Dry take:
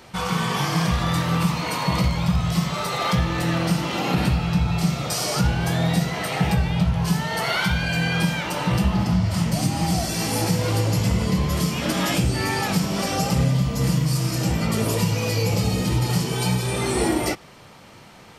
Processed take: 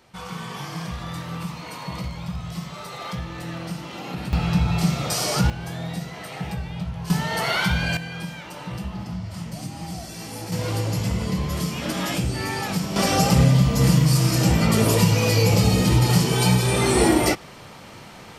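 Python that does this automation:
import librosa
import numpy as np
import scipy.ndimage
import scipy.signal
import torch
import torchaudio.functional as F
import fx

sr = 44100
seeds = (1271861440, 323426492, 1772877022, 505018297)

y = fx.gain(x, sr, db=fx.steps((0.0, -10.0), (4.33, 0.5), (5.5, -9.5), (7.1, 0.0), (7.97, -11.0), (10.52, -3.5), (12.96, 4.0)))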